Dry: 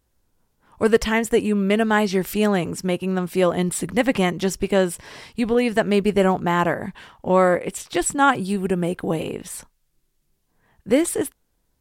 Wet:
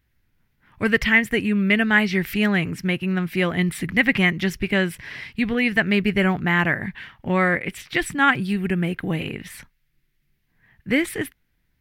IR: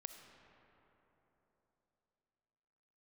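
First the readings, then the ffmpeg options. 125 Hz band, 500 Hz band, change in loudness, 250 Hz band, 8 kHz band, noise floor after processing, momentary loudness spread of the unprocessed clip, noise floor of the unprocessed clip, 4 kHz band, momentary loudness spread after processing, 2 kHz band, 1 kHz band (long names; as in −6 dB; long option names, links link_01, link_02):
+1.5 dB, −7.0 dB, 0.0 dB, 0.0 dB, −9.5 dB, −69 dBFS, 10 LU, −70 dBFS, +2.5 dB, 10 LU, +7.0 dB, −4.5 dB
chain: -af "equalizer=frequency=125:width_type=o:width=1:gain=5,equalizer=frequency=500:width_type=o:width=1:gain=-8,equalizer=frequency=1000:width_type=o:width=1:gain=-7,equalizer=frequency=2000:width_type=o:width=1:gain=12,equalizer=frequency=8000:width_type=o:width=1:gain=-12"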